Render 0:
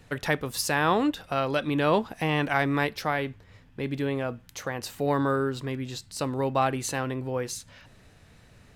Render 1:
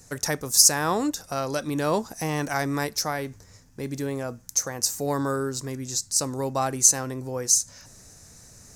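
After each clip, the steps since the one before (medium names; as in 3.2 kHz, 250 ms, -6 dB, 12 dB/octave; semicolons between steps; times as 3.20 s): resonant high shelf 4.4 kHz +12.5 dB, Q 3; reverse; upward compressor, threshold -42 dBFS; reverse; trim -1 dB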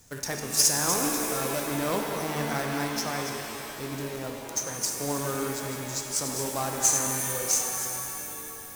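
chunks repeated in reverse 157 ms, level -7 dB; companded quantiser 4-bit; pitch-shifted reverb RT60 2.9 s, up +7 st, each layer -2 dB, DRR 3.5 dB; trim -6.5 dB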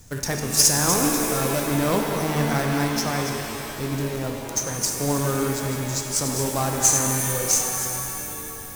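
bass shelf 180 Hz +10 dB; trim +4.5 dB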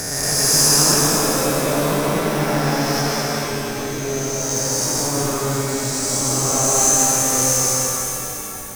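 reverse spectral sustain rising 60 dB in 2.76 s; reverberation RT60 2.6 s, pre-delay 95 ms, DRR -4 dB; trim -5.5 dB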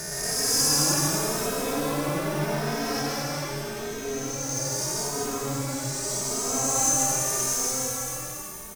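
endless flanger 2.9 ms +0.82 Hz; trim -5 dB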